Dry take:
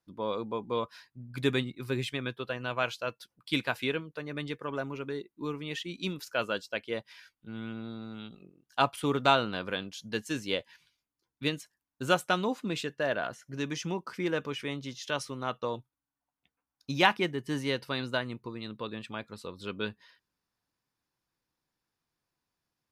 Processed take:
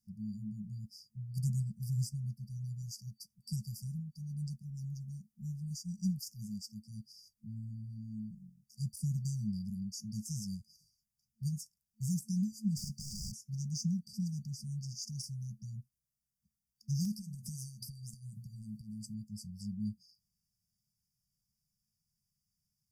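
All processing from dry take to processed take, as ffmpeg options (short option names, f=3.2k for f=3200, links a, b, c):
-filter_complex "[0:a]asettb=1/sr,asplit=3[a][b][c];[a]atrim=end=12.774[d];[b]atrim=start=12.77:end=13.32,asetpts=PTS-STARTPTS,afade=t=in:d=0.004:c=qsin,afade=t=out:st=0.546:d=0.004:c=qsin,asplit=2[e][f];[f]highpass=f=720:p=1,volume=31dB,asoftclip=type=tanh:threshold=-19dB[g];[e][g]amix=inputs=2:normalize=0,lowpass=f=2.2k:p=1,volume=-6dB,volume=32dB,asoftclip=hard,volume=-32dB[h];[c]atrim=start=13.316[i];[d][h]acrossfade=d=0.004:c1=hsin:c2=qsin[j];[j][i]acrossfade=d=0.004:c1=qsin:c2=hsin,asettb=1/sr,asplit=3[k][l][m];[k]atrim=end=17.134[n];[l]atrim=start=17.13:end=19.14,asetpts=PTS-STARTPTS,afade=t=in:d=0.004:c=qsin,afade=t=out:st=2.006:d=0.004:c=qsin,equalizer=f=11k:t=o:w=1.8:g=10,bandreject=f=60:t=h:w=6,bandreject=f=120:t=h:w=6,bandreject=f=180:t=h:w=6,bandreject=f=240:t=h:w=6,bandreject=f=300:t=h:w=6,bandreject=f=360:t=h:w=6,acompressor=threshold=-37dB:ratio=8:attack=3.2:release=140:knee=1:detection=peak[o];[m]atrim=start=19.136[p];[n][o]acrossfade=d=0.004:c1=hsin:c2=qsin[q];[q][p]acrossfade=d=0.004:c1=qsin:c2=hsin,afftfilt=real='re*(1-between(b*sr/4096,220,4600))':imag='im*(1-between(b*sr/4096,220,4600))':win_size=4096:overlap=0.75,deesser=1,volume=4dB"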